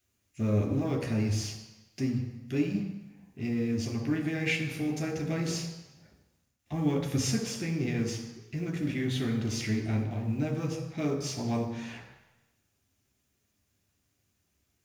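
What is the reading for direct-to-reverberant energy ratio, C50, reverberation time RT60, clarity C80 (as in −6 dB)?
0.0 dB, 6.5 dB, 1.0 s, 8.5 dB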